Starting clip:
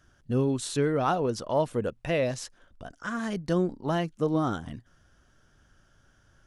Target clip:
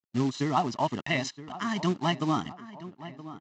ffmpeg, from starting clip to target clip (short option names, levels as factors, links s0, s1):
-filter_complex "[0:a]highshelf=f=2400:g=-2.5,aecho=1:1:1:0.98,acrossover=split=1700[s0][s1];[s1]dynaudnorm=f=280:g=11:m=2.37[s2];[s0][s2]amix=inputs=2:normalize=0,aeval=exprs='sgn(val(0))*max(abs(val(0))-0.00376,0)':c=same,atempo=1.9,aresample=16000,acrusher=bits=5:mode=log:mix=0:aa=0.000001,aresample=44100,highpass=180,lowpass=6200,asplit=2[s3][s4];[s4]adelay=971,lowpass=f=2400:p=1,volume=0.178,asplit=2[s5][s6];[s6]adelay=971,lowpass=f=2400:p=1,volume=0.55,asplit=2[s7][s8];[s8]adelay=971,lowpass=f=2400:p=1,volume=0.55,asplit=2[s9][s10];[s10]adelay=971,lowpass=f=2400:p=1,volume=0.55,asplit=2[s11][s12];[s12]adelay=971,lowpass=f=2400:p=1,volume=0.55[s13];[s3][s5][s7][s9][s11][s13]amix=inputs=6:normalize=0"